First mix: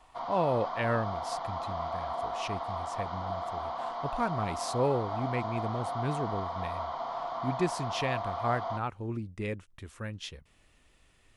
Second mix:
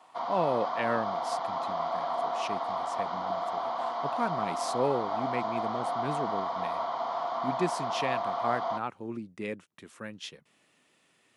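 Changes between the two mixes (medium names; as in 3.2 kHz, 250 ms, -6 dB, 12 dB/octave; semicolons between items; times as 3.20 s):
background +3.5 dB; master: add high-pass 160 Hz 24 dB/octave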